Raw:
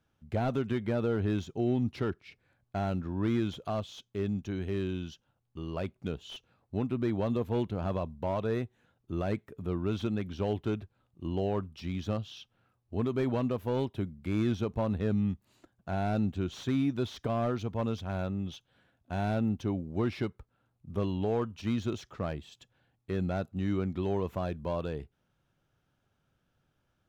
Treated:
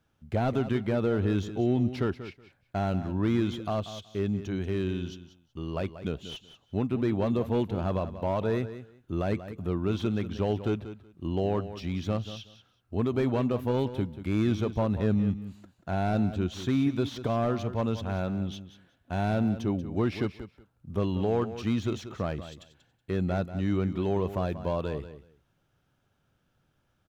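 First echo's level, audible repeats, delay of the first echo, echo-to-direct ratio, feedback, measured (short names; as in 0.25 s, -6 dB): -12.5 dB, 2, 0.186 s, -12.5 dB, 17%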